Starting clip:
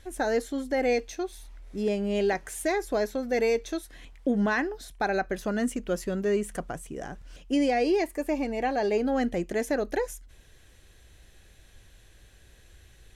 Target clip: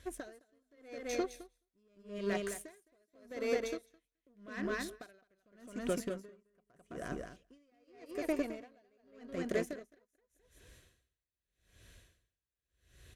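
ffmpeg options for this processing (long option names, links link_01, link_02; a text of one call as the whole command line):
ffmpeg -i in.wav -filter_complex "[0:a]asettb=1/sr,asplit=3[link_01][link_02][link_03];[link_01]atrim=end=6.054[link_04];[link_02]atrim=start=6.05:end=7.06,asetpts=PTS-STARTPTS,afade=type=in:duration=0.004:curve=qsin,afade=type=out:start_time=1.006:duration=0.004:curve=qsin,acrossover=split=2600[link_05][link_06];[link_06]acompressor=threshold=-51dB:ratio=4:attack=1:release=60[link_07];[link_05][link_07]amix=inputs=2:normalize=0[link_08];[link_03]atrim=start=7.056[link_09];[link_04][link_08]acrossfade=duration=0.004:curve1=hsin:curve2=qsin[link_10];[link_10][link_09]acrossfade=duration=0.004:curve1=qsin:curve2=hsin,highpass=44,acompressor=threshold=-32dB:ratio=5,aecho=1:1:213|426|639|852:0.668|0.167|0.0418|0.0104,aeval=exprs='0.0794*(cos(1*acos(clip(val(0)/0.0794,-1,1)))-cos(1*PI/2))+0.00501*(cos(7*acos(clip(val(0)/0.0794,-1,1)))-cos(7*PI/2))':channel_layout=same,asuperstop=centerf=830:order=8:qfactor=5.2,aeval=exprs='val(0)*pow(10,-40*(0.5-0.5*cos(2*PI*0.84*n/s))/20)':channel_layout=same,volume=1.5dB" out.wav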